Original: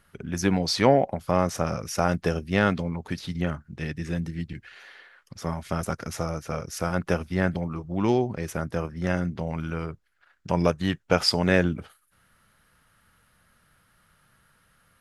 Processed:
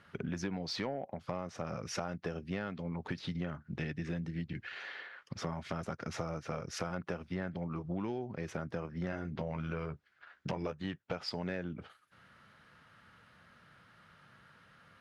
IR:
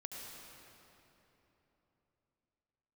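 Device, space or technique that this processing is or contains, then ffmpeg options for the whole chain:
AM radio: -filter_complex "[0:a]asettb=1/sr,asplit=3[a][b][c];[a]atrim=end=9.114[d];[b]atrim=start=9.11:end=10.85,asetpts=PTS-STARTPTS,afade=t=in:d=0.004:c=qsin,afade=t=out:st=1.736:d=0.004:c=qsin,asplit=2[e][f];[f]adelay=14,volume=-6dB[g];[e][g]amix=inputs=2:normalize=0,atrim=end_sample=76734[h];[c]atrim=start=10.846[i];[d][h]acrossfade=d=0.004:c1=hsin:c2=qsin[j];[j][i]acrossfade=d=0.004:c1=qsin:c2=hsin,highpass=100,lowpass=4.2k,acompressor=threshold=-37dB:ratio=10,asoftclip=type=tanh:threshold=-27dB,volume=3.5dB"

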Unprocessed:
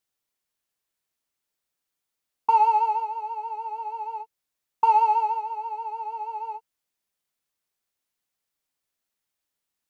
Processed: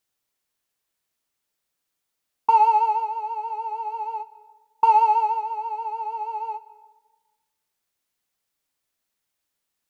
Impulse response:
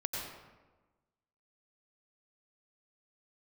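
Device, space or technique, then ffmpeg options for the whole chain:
compressed reverb return: -filter_complex "[0:a]asplit=3[a][b][c];[a]afade=t=out:st=3.51:d=0.02[d];[b]highpass=f=290:w=0.5412,highpass=f=290:w=1.3066,afade=t=in:st=3.51:d=0.02,afade=t=out:st=3.92:d=0.02[e];[c]afade=t=in:st=3.92:d=0.02[f];[d][e][f]amix=inputs=3:normalize=0,asplit=2[g][h];[1:a]atrim=start_sample=2205[i];[h][i]afir=irnorm=-1:irlink=0,acompressor=threshold=-30dB:ratio=6,volume=-14.5dB[j];[g][j]amix=inputs=2:normalize=0,volume=2dB"

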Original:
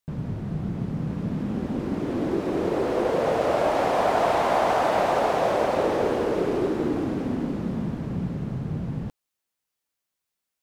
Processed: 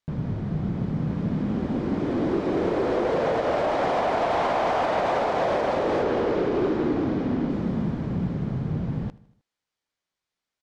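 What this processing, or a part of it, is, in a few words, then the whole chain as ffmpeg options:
limiter into clipper: -filter_complex "[0:a]bandreject=f=2.7k:w=19,asettb=1/sr,asplit=3[a][b][c];[a]atrim=end=6.034[d];[b]atrim=start=6.03:end=7.5,asetpts=PTS-STARTPTS,afade=t=in:d=0.004:c=qsin,afade=t=out:st=1.466:d=0.004:c=qsin,lowpass=6.3k[e];[c]atrim=start=7.496[f];[d][e]acrossfade=d=0.004:c1=hsin:c2=qsin[g];[g][f]acrossfade=d=0.004:c1=qsin:c2=hsin,alimiter=limit=-15.5dB:level=0:latency=1:release=95,asoftclip=type=hard:threshold=-20.5dB,lowpass=5.3k,aecho=1:1:78|156|234|312:0.0891|0.049|0.027|0.0148,volume=2dB"

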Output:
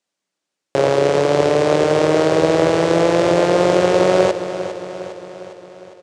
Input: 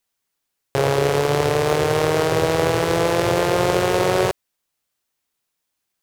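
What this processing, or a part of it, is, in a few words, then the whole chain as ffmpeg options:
car door speaker: -af "highpass=100,equalizer=f=120:t=q:w=4:g=-9,equalizer=f=180:t=q:w=4:g=7,equalizer=f=310:t=q:w=4:g=8,equalizer=f=580:t=q:w=4:g=8,lowpass=f=8.2k:w=0.5412,lowpass=f=8.2k:w=1.3066,aecho=1:1:406|812|1218|1624|2030|2436:0.266|0.152|0.0864|0.0493|0.0281|0.016"

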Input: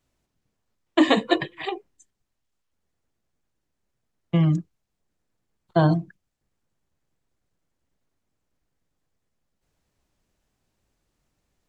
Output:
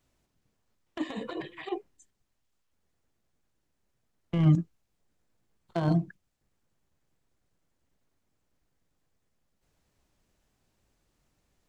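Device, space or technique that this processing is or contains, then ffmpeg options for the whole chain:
de-esser from a sidechain: -filter_complex "[0:a]asettb=1/sr,asplit=3[a][b][c];[a]atrim=end=4.574[d];[b]atrim=start=4.57:end=5.82,asetpts=PTS-STARTPTS,afade=t=in:d=0.004:c=qsin,afade=t=out:st=1.246:d=0.004:c=qsin,asplit=2[e][f];[f]adelay=18,volume=-9.5dB[g];[e][g]amix=inputs=2:normalize=0,atrim=end_sample=55125[h];[c]atrim=start=5.816[i];[d][h]acrossfade=d=0.004:c1=hsin:c2=qsin[j];[j][i]acrossfade=d=0.004:c1=qsin:c2=hsin,asplit=2[k][l];[l]highpass=4.3k,apad=whole_len=515237[m];[k][m]sidechaincompress=threshold=-52dB:ratio=12:attack=0.69:release=28,volume=1dB"

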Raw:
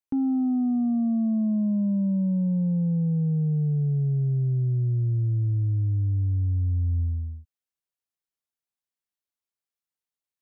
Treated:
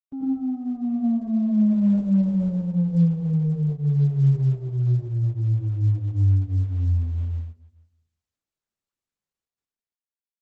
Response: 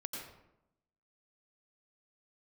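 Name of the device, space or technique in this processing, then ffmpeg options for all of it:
speakerphone in a meeting room: -filter_complex "[1:a]atrim=start_sample=2205[a];[0:a][a]afir=irnorm=-1:irlink=0,asplit=2[b][c];[c]adelay=200,highpass=300,lowpass=3.4k,asoftclip=type=hard:threshold=-23dB,volume=-29dB[d];[b][d]amix=inputs=2:normalize=0,dynaudnorm=f=150:g=13:m=5.5dB,agate=range=-7dB:threshold=-32dB:ratio=16:detection=peak,volume=-3.5dB" -ar 48000 -c:a libopus -b:a 12k

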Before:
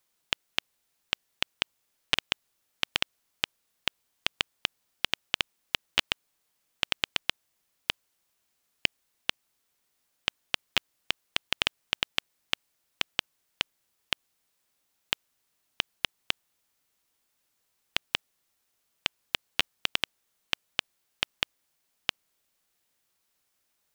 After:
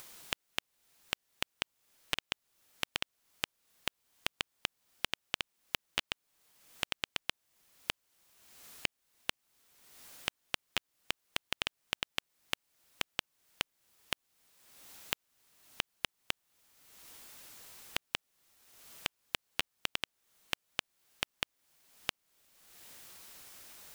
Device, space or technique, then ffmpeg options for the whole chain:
upward and downward compression: -af "acompressor=mode=upward:threshold=-46dB:ratio=2.5,acompressor=threshold=-41dB:ratio=4,volume=7.5dB"

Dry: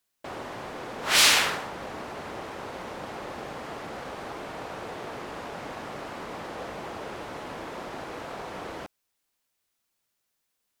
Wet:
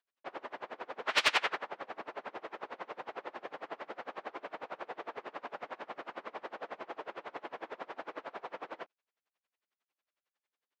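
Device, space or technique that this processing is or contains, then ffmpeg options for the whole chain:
helicopter radio: -af "highpass=390,lowpass=2.8k,aeval=exprs='val(0)*pow(10,-28*(0.5-0.5*cos(2*PI*11*n/s))/20)':c=same,asoftclip=type=hard:threshold=-18.5dB,volume=1dB"

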